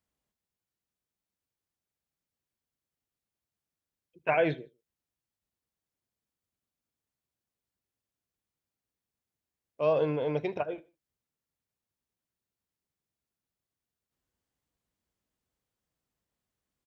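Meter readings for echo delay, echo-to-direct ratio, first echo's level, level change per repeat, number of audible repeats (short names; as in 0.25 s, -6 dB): 77 ms, -21.5 dB, -22.0 dB, -9.0 dB, 2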